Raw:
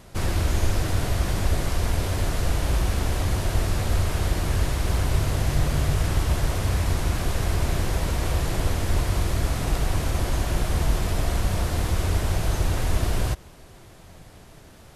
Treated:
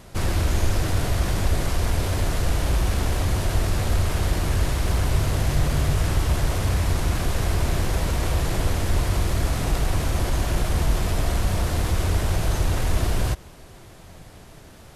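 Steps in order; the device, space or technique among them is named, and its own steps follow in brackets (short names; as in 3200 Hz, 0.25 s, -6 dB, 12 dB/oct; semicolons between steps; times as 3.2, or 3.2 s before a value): parallel distortion (in parallel at -10.5 dB: hard clip -25 dBFS, distortion -7 dB)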